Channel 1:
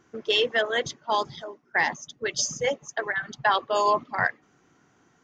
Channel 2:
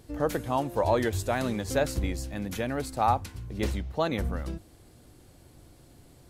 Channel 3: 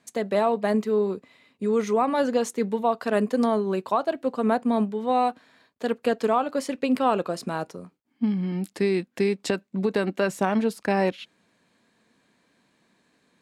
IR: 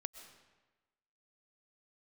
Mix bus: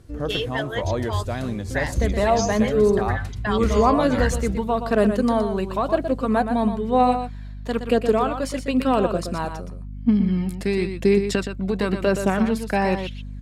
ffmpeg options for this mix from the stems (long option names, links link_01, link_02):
-filter_complex "[0:a]volume=-4.5dB[link_01];[1:a]lowpass=12000,lowshelf=frequency=220:gain=11,volume=-3dB,asplit=2[link_02][link_03];[link_03]volume=-17dB[link_04];[2:a]aeval=exprs='val(0)+0.00891*(sin(2*PI*50*n/s)+sin(2*PI*2*50*n/s)/2+sin(2*PI*3*50*n/s)/3+sin(2*PI*4*50*n/s)/4+sin(2*PI*5*50*n/s)/5)':channel_layout=same,aphaser=in_gain=1:out_gain=1:delay=1.5:decay=0.38:speed=0.97:type=triangular,adelay=1850,volume=2dB,asplit=2[link_05][link_06];[link_06]volume=-8.5dB[link_07];[link_04][link_07]amix=inputs=2:normalize=0,aecho=0:1:120:1[link_08];[link_01][link_02][link_05][link_08]amix=inputs=4:normalize=0,bandreject=frequency=850:width=12"